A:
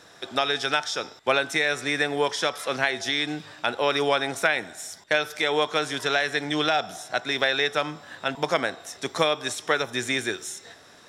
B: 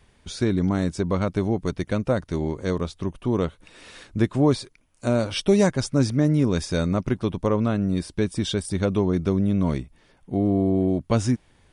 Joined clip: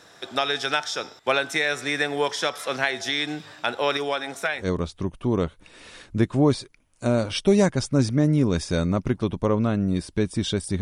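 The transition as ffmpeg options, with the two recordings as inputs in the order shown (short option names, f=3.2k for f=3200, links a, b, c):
-filter_complex "[0:a]asettb=1/sr,asplit=3[a][b][c];[a]atrim=end=3.974[d];[b]atrim=start=3.97:end=4.69,asetpts=PTS-STARTPTS,afade=t=in:d=0.004:c=qsin,afade=t=out:st=0.716:d=0.004:c=qsin,flanger=delay=2.6:depth=6.3:regen=-67:speed=0.32:shape=triangular[e];[c]atrim=start=4.686[f];[d][e]acrossfade=d=0.004:c1=hsin:c2=qsin[g];[g][f]acrossfade=d=0.004:c1=qsin:c2=hsin,apad=whole_dur=10.81,atrim=end=10.81,atrim=end=4.69,asetpts=PTS-STARTPTS[h];[1:a]atrim=start=2.54:end=8.82,asetpts=PTS-STARTPTS[i];[h][i]acrossfade=d=0.16:c1=tri:c2=tri"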